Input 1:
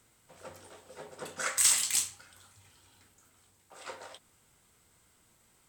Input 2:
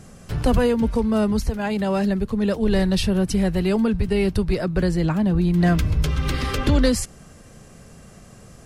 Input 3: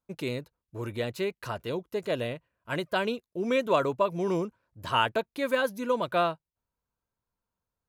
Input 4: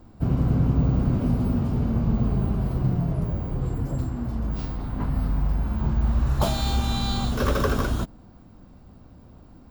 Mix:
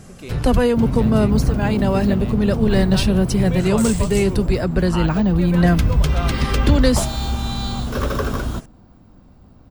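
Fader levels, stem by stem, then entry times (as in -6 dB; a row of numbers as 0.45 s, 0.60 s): -5.0 dB, +2.5 dB, -4.0 dB, +1.0 dB; 2.20 s, 0.00 s, 0.00 s, 0.55 s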